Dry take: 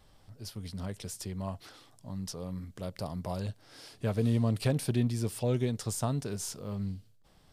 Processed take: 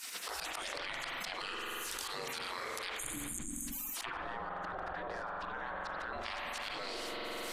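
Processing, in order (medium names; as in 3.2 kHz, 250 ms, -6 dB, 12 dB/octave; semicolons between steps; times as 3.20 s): 2.95–3.69 s: spectral selection erased 320–6300 Hz; gate with hold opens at -46 dBFS; spectral gate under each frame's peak -30 dB weak; low-pass that closes with the level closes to 1.5 kHz, closed at -50 dBFS; 4.10–6.13 s: resonant high shelf 1.9 kHz -6 dB, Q 3; slow attack 170 ms; spring tank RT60 1.3 s, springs 45 ms, chirp 45 ms, DRR 3.5 dB; level flattener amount 100%; trim +11.5 dB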